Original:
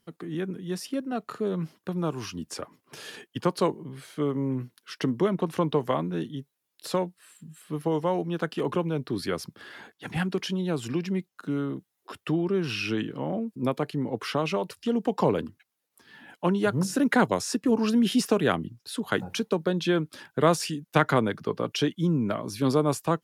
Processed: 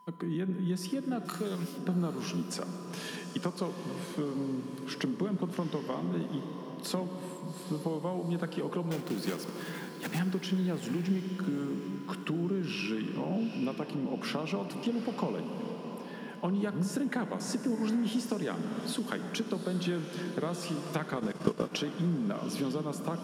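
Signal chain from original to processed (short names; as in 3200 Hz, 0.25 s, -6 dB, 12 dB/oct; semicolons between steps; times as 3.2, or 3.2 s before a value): 8.91–10.2 block floating point 3-bit; reverb RT60 2.2 s, pre-delay 20 ms, DRR 11 dB; whine 1000 Hz -54 dBFS; 1.25–1.78 tilt +4 dB/oct; compressor 6:1, threshold -33 dBFS, peak gain reduction 17 dB; resonant low shelf 130 Hz -11 dB, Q 3; diffused feedback echo 0.811 s, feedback 49%, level -10 dB; 21.12–21.77 transient shaper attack +9 dB, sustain -7 dB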